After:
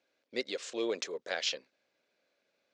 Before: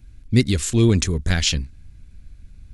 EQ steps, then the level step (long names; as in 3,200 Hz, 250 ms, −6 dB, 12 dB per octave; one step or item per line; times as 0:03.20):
four-pole ladder high-pass 480 Hz, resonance 65%
low-pass filter 5,800 Hz 24 dB per octave
0.0 dB